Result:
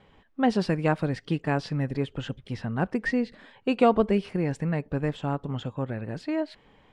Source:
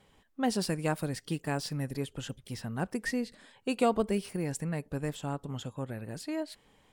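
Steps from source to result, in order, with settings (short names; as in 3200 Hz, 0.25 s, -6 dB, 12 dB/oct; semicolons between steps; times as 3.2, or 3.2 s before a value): LPF 3000 Hz 12 dB/oct; gain +6.5 dB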